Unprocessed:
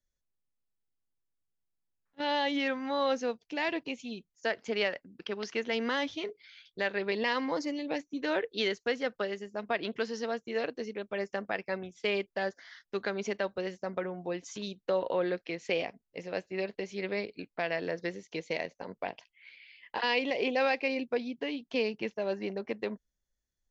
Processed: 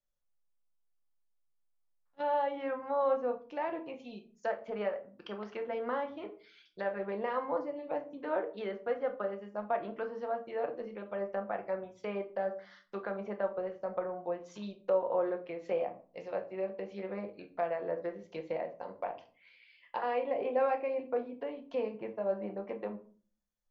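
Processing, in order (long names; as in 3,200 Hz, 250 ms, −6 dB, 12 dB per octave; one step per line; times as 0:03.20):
treble cut that deepens with the level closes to 1,500 Hz, closed at −31 dBFS
flat-topped bell 820 Hz +8 dB
on a send: convolution reverb RT60 0.40 s, pre-delay 6 ms, DRR 4.5 dB
on the sum: level −8.5 dB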